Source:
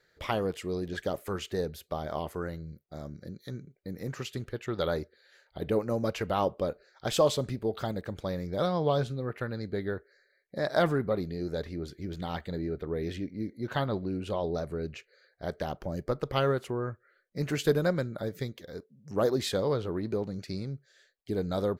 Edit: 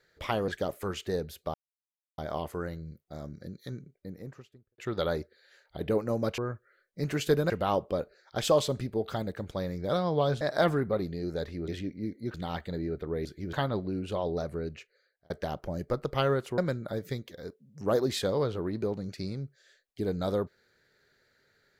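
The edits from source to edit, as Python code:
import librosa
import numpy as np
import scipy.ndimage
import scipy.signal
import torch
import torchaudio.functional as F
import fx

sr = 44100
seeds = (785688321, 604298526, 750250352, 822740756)

y = fx.studio_fade_out(x, sr, start_s=3.5, length_s=1.09)
y = fx.edit(y, sr, fx.cut(start_s=0.48, length_s=0.45),
    fx.insert_silence(at_s=1.99, length_s=0.64),
    fx.cut(start_s=9.1, length_s=1.49),
    fx.swap(start_s=11.86, length_s=0.28, other_s=13.05, other_length_s=0.66),
    fx.fade_out_span(start_s=14.78, length_s=0.7),
    fx.move(start_s=16.76, length_s=1.12, to_s=6.19), tone=tone)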